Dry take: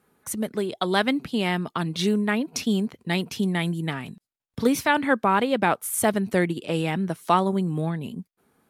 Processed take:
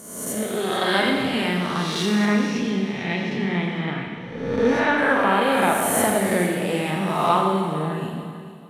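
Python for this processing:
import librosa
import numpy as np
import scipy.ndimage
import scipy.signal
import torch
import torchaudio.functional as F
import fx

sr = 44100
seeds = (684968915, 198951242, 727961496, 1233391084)

y = fx.spec_swells(x, sr, rise_s=1.11)
y = fx.lowpass(y, sr, hz=2800.0, slope=12, at=(2.25, 4.98))
y = fx.echo_feedback(y, sr, ms=446, feedback_pct=30, wet_db=-15)
y = fx.rev_schroeder(y, sr, rt60_s=1.6, comb_ms=30, drr_db=0.5)
y = F.gain(torch.from_numpy(y), -3.0).numpy()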